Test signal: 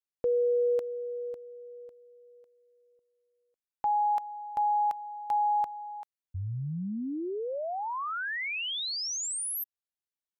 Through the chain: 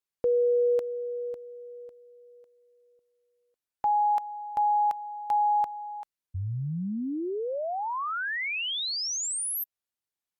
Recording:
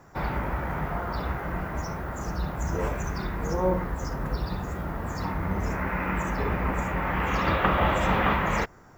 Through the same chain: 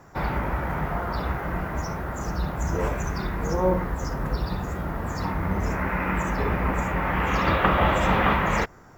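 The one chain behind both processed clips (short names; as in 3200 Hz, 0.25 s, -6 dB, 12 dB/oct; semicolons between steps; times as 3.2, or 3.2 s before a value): gain +2.5 dB; Opus 96 kbps 48000 Hz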